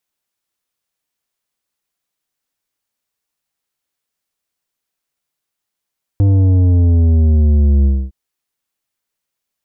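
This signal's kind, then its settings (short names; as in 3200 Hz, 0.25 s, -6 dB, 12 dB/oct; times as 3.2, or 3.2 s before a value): sub drop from 100 Hz, over 1.91 s, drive 9.5 dB, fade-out 0.26 s, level -9 dB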